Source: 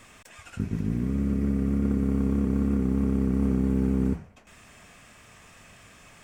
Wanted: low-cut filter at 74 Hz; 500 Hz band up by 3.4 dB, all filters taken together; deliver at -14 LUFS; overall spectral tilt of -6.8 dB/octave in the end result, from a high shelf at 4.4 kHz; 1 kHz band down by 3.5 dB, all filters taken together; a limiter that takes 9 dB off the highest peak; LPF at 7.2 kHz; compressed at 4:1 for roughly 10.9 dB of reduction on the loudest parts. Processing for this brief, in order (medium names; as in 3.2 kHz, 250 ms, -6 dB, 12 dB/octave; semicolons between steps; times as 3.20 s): high-pass 74 Hz; low-pass 7.2 kHz; peaking EQ 500 Hz +5.5 dB; peaking EQ 1 kHz -7 dB; treble shelf 4.4 kHz +8 dB; compression 4:1, threshold -34 dBFS; trim +27.5 dB; peak limiter -3.5 dBFS